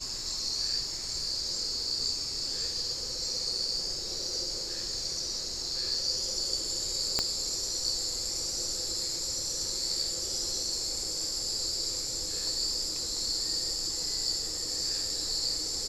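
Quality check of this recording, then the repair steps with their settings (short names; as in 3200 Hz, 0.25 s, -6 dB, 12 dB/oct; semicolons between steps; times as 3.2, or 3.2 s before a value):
7.19 pop -12 dBFS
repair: de-click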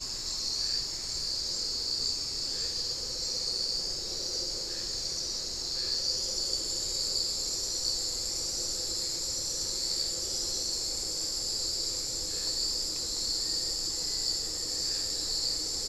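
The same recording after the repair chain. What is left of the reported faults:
7.19 pop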